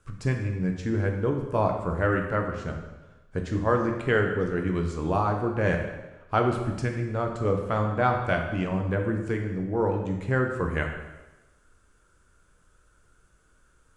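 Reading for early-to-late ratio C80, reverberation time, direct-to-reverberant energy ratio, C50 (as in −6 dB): 7.5 dB, 1.1 s, 2.5 dB, 5.5 dB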